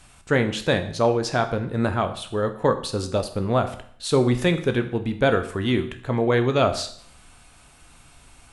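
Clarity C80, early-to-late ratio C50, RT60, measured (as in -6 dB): 15.0 dB, 12.0 dB, 0.60 s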